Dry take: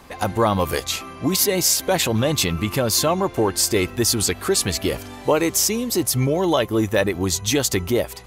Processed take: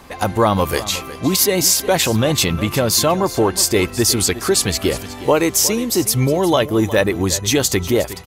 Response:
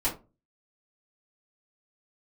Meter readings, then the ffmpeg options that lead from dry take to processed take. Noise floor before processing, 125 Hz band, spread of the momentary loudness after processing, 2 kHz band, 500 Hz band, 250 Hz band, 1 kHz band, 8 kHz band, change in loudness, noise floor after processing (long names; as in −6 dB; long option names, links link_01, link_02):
−38 dBFS, +3.5 dB, 5 LU, +3.5 dB, +3.5 dB, +3.5 dB, +3.5 dB, +3.5 dB, +3.5 dB, −33 dBFS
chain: -af "aecho=1:1:362:0.178,volume=3.5dB"